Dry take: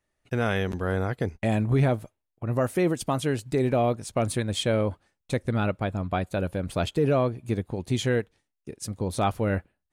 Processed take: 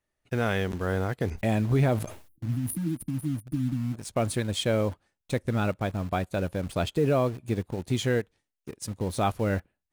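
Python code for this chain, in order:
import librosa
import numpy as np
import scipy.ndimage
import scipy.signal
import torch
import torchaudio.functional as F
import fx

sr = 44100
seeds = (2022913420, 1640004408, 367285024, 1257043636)

p1 = fx.spec_erase(x, sr, start_s=2.28, length_s=1.66, low_hz=340.0, high_hz=9100.0)
p2 = fx.quant_dither(p1, sr, seeds[0], bits=6, dither='none')
p3 = p1 + (p2 * 10.0 ** (-8.0 / 20.0))
p4 = fx.sustainer(p3, sr, db_per_s=93.0, at=(1.23, 2.94))
y = p4 * 10.0 ** (-4.0 / 20.0)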